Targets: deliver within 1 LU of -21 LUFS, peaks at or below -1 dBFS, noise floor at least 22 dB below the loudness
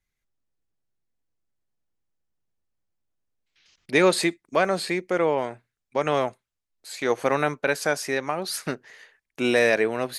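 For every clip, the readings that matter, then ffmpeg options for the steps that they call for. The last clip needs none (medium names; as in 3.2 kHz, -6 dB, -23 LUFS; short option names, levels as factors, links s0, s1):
loudness -24.5 LUFS; peak level -6.0 dBFS; loudness target -21.0 LUFS
-> -af "volume=1.5"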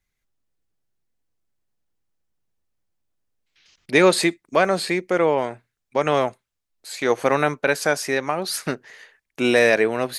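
loudness -21.0 LUFS; peak level -2.5 dBFS; noise floor -80 dBFS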